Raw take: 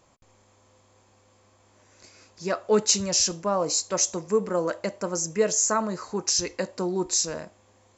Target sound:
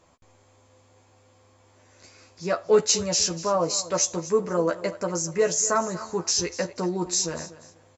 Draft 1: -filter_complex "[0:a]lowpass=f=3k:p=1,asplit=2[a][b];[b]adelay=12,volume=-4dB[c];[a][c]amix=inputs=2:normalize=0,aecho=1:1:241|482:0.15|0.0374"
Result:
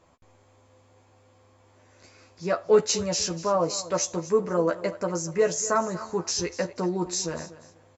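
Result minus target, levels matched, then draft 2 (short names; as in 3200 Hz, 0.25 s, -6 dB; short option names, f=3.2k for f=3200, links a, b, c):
8000 Hz band -3.0 dB
-filter_complex "[0:a]lowpass=f=7.4k:p=1,asplit=2[a][b];[b]adelay=12,volume=-4dB[c];[a][c]amix=inputs=2:normalize=0,aecho=1:1:241|482:0.15|0.0374"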